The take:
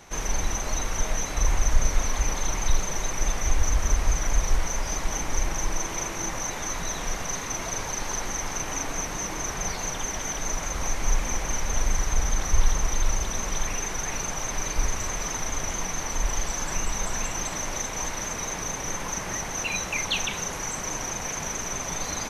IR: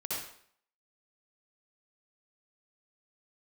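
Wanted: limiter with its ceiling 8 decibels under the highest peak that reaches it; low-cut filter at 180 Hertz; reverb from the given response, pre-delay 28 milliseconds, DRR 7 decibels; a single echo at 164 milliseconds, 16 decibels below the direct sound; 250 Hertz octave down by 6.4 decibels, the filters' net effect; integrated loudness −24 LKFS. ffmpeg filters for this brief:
-filter_complex "[0:a]highpass=180,equalizer=frequency=250:width_type=o:gain=-7,alimiter=limit=-23.5dB:level=0:latency=1,aecho=1:1:164:0.158,asplit=2[link_01][link_02];[1:a]atrim=start_sample=2205,adelay=28[link_03];[link_02][link_03]afir=irnorm=-1:irlink=0,volume=-10.5dB[link_04];[link_01][link_04]amix=inputs=2:normalize=0,volume=6.5dB"

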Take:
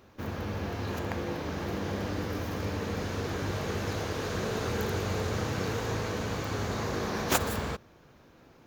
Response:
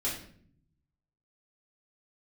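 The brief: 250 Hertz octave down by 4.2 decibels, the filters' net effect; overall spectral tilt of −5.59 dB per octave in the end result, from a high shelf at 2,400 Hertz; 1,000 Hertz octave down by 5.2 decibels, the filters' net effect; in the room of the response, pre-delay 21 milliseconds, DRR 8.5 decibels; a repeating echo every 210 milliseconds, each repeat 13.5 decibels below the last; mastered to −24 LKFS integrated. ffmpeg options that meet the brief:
-filter_complex "[0:a]equalizer=frequency=250:width_type=o:gain=-5.5,equalizer=frequency=1000:width_type=o:gain=-5.5,highshelf=frequency=2400:gain=-5,aecho=1:1:210|420:0.211|0.0444,asplit=2[link_01][link_02];[1:a]atrim=start_sample=2205,adelay=21[link_03];[link_02][link_03]afir=irnorm=-1:irlink=0,volume=-13.5dB[link_04];[link_01][link_04]amix=inputs=2:normalize=0,volume=10dB"

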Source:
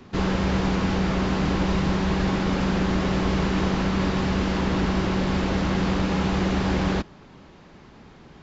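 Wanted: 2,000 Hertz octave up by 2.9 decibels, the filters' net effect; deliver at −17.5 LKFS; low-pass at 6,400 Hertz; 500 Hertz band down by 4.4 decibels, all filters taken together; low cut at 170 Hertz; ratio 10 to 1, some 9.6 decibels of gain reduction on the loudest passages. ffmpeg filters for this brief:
ffmpeg -i in.wav -af "highpass=170,lowpass=6400,equalizer=frequency=500:width_type=o:gain=-6,equalizer=frequency=2000:width_type=o:gain=4,acompressor=threshold=-32dB:ratio=10,volume=18dB" out.wav

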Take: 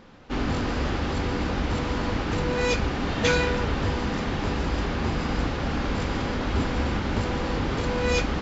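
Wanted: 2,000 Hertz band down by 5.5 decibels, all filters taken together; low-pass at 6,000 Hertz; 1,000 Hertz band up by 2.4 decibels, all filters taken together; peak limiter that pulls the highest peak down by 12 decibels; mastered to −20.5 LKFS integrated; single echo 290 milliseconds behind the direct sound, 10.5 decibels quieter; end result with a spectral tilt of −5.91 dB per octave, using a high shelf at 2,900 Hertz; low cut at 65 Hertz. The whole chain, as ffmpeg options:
ffmpeg -i in.wav -af "highpass=65,lowpass=6000,equalizer=frequency=1000:width_type=o:gain=5.5,equalizer=frequency=2000:width_type=o:gain=-8.5,highshelf=frequency=2900:gain=-4,alimiter=limit=-21.5dB:level=0:latency=1,aecho=1:1:290:0.299,volume=9.5dB" out.wav

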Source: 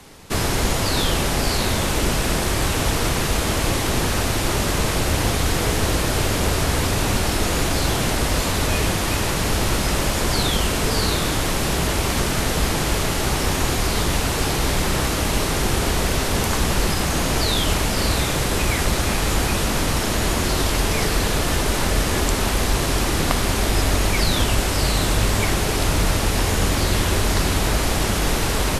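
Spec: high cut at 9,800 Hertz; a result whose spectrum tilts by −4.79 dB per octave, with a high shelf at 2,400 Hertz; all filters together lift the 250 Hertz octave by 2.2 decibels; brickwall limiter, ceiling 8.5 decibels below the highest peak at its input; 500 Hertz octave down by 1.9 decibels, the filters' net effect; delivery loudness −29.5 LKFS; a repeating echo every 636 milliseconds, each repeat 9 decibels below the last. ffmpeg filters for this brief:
ffmpeg -i in.wav -af "lowpass=9800,equalizer=frequency=250:width_type=o:gain=4,equalizer=frequency=500:width_type=o:gain=-3.5,highshelf=frequency=2400:gain=-5.5,alimiter=limit=-13.5dB:level=0:latency=1,aecho=1:1:636|1272|1908|2544:0.355|0.124|0.0435|0.0152,volume=-6dB" out.wav

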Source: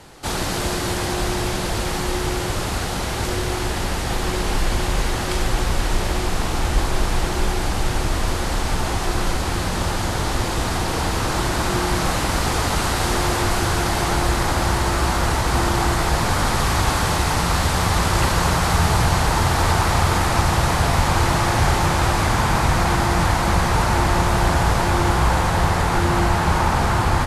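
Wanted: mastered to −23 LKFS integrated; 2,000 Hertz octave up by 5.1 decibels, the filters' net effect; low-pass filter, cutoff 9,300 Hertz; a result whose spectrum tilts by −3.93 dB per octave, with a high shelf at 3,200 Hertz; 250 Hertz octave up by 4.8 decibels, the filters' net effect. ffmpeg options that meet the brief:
ffmpeg -i in.wav -af "lowpass=9300,equalizer=frequency=250:width_type=o:gain=7,equalizer=frequency=2000:width_type=o:gain=4.5,highshelf=frequency=3200:gain=6,volume=-5.5dB" out.wav

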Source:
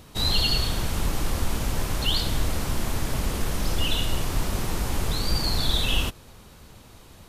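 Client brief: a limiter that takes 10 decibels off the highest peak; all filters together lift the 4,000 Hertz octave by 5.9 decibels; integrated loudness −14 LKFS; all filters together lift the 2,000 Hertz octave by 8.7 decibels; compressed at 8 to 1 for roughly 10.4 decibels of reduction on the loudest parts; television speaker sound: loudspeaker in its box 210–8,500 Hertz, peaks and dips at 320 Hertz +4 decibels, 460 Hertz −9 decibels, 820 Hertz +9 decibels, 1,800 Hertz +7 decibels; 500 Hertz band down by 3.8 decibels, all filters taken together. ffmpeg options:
ffmpeg -i in.wav -af "equalizer=frequency=500:width_type=o:gain=-4,equalizer=frequency=2000:width_type=o:gain=6,equalizer=frequency=4000:width_type=o:gain=5,acompressor=threshold=-26dB:ratio=8,alimiter=level_in=3.5dB:limit=-24dB:level=0:latency=1,volume=-3.5dB,highpass=frequency=210:width=0.5412,highpass=frequency=210:width=1.3066,equalizer=frequency=320:width_type=q:width=4:gain=4,equalizer=frequency=460:width_type=q:width=4:gain=-9,equalizer=frequency=820:width_type=q:width=4:gain=9,equalizer=frequency=1800:width_type=q:width=4:gain=7,lowpass=frequency=8500:width=0.5412,lowpass=frequency=8500:width=1.3066,volume=23.5dB" out.wav

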